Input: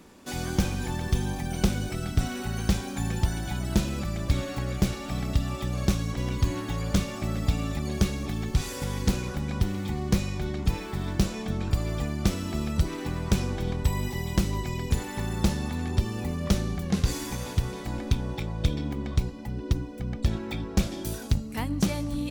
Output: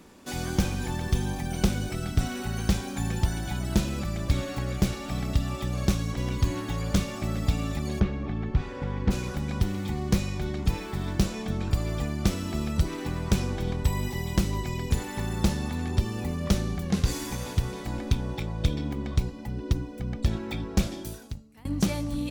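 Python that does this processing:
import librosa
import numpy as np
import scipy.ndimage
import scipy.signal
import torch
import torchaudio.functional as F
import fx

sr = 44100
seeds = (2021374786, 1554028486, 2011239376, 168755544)

y = fx.lowpass(x, sr, hz=2000.0, slope=12, at=(7.99, 9.1), fade=0.02)
y = fx.edit(y, sr, fx.fade_out_to(start_s=20.88, length_s=0.77, curve='qua', floor_db=-22.5), tone=tone)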